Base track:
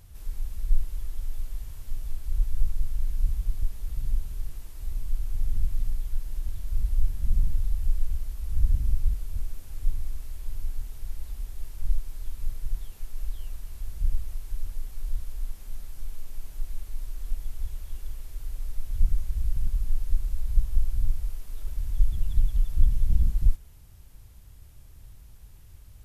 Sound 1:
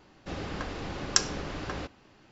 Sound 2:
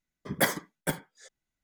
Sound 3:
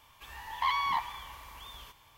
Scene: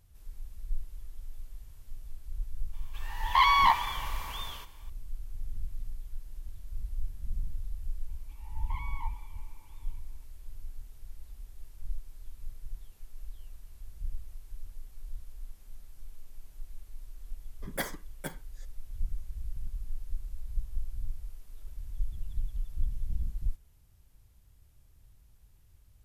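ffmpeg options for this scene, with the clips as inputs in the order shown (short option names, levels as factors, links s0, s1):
-filter_complex "[3:a]asplit=2[s0][s1];[0:a]volume=0.282[s2];[s0]dynaudnorm=f=120:g=9:m=3.55[s3];[s1]asplit=3[s4][s5][s6];[s4]bandpass=f=300:t=q:w=8,volume=1[s7];[s5]bandpass=f=870:t=q:w=8,volume=0.501[s8];[s6]bandpass=f=2240:t=q:w=8,volume=0.355[s9];[s7][s8][s9]amix=inputs=3:normalize=0[s10];[s3]atrim=end=2.17,asetpts=PTS-STARTPTS,volume=0.75,afade=t=in:d=0.004:c=hsin,afade=t=out:st=2.166:d=0.004:c=hsin,adelay=2730[s11];[s10]atrim=end=2.17,asetpts=PTS-STARTPTS,volume=0.794,afade=t=in:d=0.004:c=hsin,afade=t=out:st=2.166:d=0.004:c=hsin,adelay=8080[s12];[2:a]atrim=end=1.63,asetpts=PTS-STARTPTS,volume=0.355,afade=t=in:d=0.004:c=hsin,afade=t=out:st=1.626:d=0.004:c=hsin,adelay=17370[s13];[s2][s11][s12][s13]amix=inputs=4:normalize=0"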